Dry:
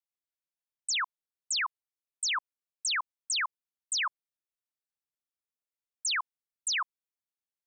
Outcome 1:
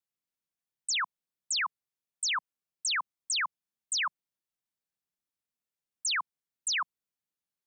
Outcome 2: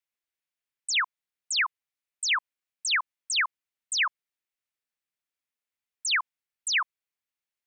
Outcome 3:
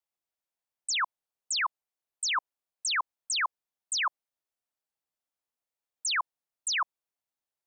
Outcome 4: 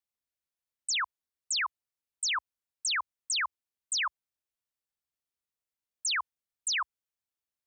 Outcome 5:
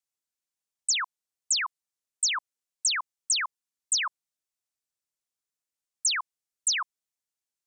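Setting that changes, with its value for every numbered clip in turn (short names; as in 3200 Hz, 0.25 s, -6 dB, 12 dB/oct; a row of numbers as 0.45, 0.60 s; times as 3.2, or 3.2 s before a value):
bell, frequency: 170, 2200, 730, 64, 7200 Hz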